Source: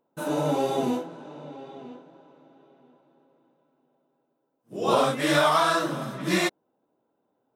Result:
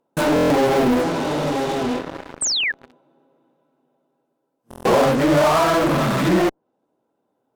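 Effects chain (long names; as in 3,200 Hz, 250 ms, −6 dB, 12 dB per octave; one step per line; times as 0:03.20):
treble cut that deepens with the level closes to 850 Hz, closed at −22 dBFS
in parallel at −9.5 dB: fuzz pedal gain 48 dB, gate −50 dBFS
on the sum: sound drawn into the spectrogram fall, 0:02.41–0:02.72, 1,600–8,900 Hz −23 dBFS
buffer that repeats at 0:00.34/0:04.69, samples 1,024, times 6
level +2.5 dB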